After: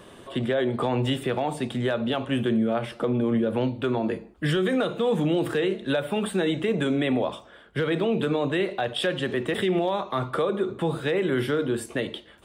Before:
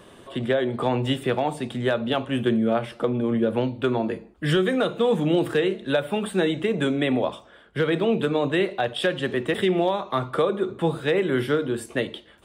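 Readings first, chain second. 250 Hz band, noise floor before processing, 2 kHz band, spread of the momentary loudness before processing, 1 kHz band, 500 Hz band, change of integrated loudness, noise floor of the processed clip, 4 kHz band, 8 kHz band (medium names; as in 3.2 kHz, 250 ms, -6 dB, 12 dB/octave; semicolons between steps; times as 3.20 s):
-1.0 dB, -51 dBFS, -2.0 dB, 6 LU, -2.0 dB, -2.0 dB, -2.0 dB, -50 dBFS, -1.5 dB, +0.5 dB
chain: peak limiter -17 dBFS, peak gain reduction 5.5 dB; trim +1 dB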